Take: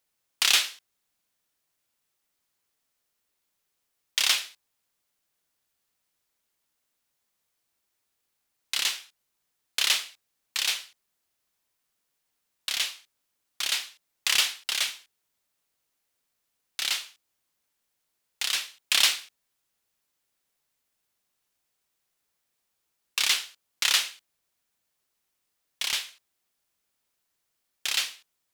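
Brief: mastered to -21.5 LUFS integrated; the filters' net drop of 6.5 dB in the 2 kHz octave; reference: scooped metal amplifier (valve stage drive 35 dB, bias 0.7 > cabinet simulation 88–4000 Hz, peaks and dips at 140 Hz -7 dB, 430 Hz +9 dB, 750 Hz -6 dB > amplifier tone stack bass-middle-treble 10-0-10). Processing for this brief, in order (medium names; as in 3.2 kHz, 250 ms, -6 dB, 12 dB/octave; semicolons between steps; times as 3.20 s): peaking EQ 2 kHz -3.5 dB; valve stage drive 35 dB, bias 0.7; cabinet simulation 88–4000 Hz, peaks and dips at 140 Hz -7 dB, 430 Hz +9 dB, 750 Hz -6 dB; amplifier tone stack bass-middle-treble 10-0-10; trim +23.5 dB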